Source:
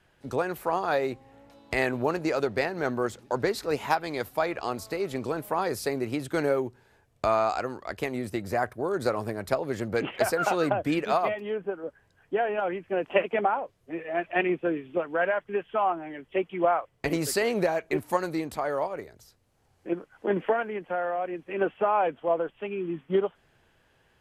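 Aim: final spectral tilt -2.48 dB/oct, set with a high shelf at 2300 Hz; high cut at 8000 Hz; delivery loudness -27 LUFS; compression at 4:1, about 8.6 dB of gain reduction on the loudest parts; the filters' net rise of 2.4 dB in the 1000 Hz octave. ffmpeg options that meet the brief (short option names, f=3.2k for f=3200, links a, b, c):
-af "lowpass=8k,equalizer=f=1k:t=o:g=5,highshelf=f=2.3k:g=-8.5,acompressor=threshold=-28dB:ratio=4,volume=6.5dB"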